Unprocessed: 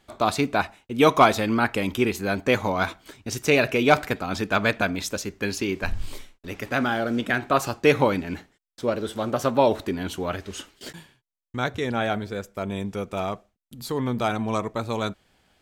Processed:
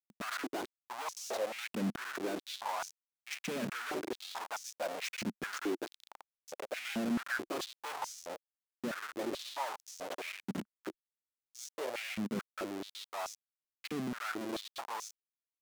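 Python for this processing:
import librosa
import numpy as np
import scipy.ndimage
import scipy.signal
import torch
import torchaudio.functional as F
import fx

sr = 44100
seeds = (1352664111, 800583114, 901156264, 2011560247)

y = fx.schmitt(x, sr, flips_db=-29.5)
y = fx.tube_stage(y, sr, drive_db=43.0, bias=0.75)
y = fx.filter_held_highpass(y, sr, hz=4.6, low_hz=210.0, high_hz=6000.0)
y = y * 10.0 ** (4.0 / 20.0)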